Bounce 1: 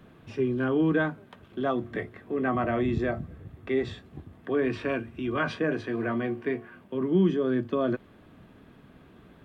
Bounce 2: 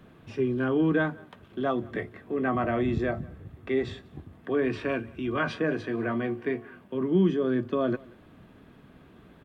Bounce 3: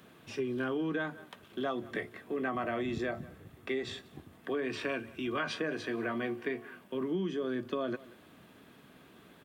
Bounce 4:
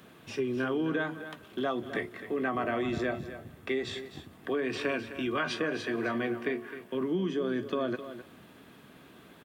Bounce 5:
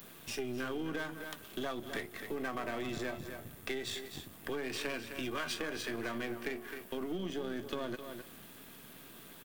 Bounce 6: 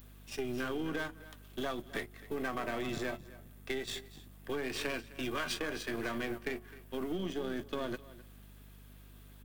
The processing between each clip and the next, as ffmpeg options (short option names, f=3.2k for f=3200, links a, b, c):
-filter_complex "[0:a]asplit=2[a][b];[b]adelay=180.8,volume=-24dB,highshelf=f=4k:g=-4.07[c];[a][c]amix=inputs=2:normalize=0"
-af "highpass=f=230:p=1,highshelf=f=3.5k:g=12,acompressor=threshold=-28dB:ratio=6,volume=-2dB"
-af "aecho=1:1:259:0.251,volume=3dB"
-af "aeval=exprs='if(lt(val(0),0),0.447*val(0),val(0))':c=same,aemphasis=mode=production:type=75kf,acompressor=threshold=-38dB:ratio=2"
-af "agate=range=-11dB:threshold=-39dB:ratio=16:detection=peak,aeval=exprs='val(0)+0.00178*(sin(2*PI*50*n/s)+sin(2*PI*2*50*n/s)/2+sin(2*PI*3*50*n/s)/3+sin(2*PI*4*50*n/s)/4+sin(2*PI*5*50*n/s)/5)':c=same,volume=1.5dB"